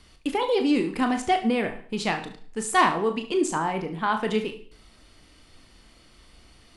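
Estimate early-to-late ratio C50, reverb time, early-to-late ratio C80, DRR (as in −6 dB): 11.0 dB, 0.50 s, 16.0 dB, 6.0 dB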